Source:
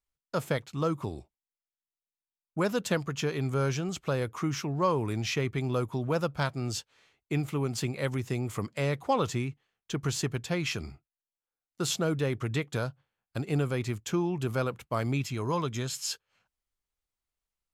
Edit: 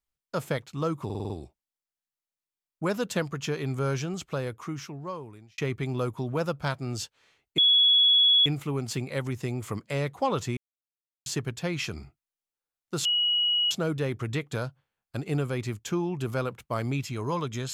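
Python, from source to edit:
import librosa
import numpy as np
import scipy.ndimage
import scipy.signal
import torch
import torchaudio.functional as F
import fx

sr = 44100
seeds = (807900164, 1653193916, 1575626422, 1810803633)

y = fx.edit(x, sr, fx.stutter(start_s=1.05, slice_s=0.05, count=6),
    fx.fade_out_span(start_s=3.87, length_s=1.46),
    fx.insert_tone(at_s=7.33, length_s=0.88, hz=3370.0, db=-16.5),
    fx.silence(start_s=9.44, length_s=0.69),
    fx.insert_tone(at_s=11.92, length_s=0.66, hz=2910.0, db=-21.5), tone=tone)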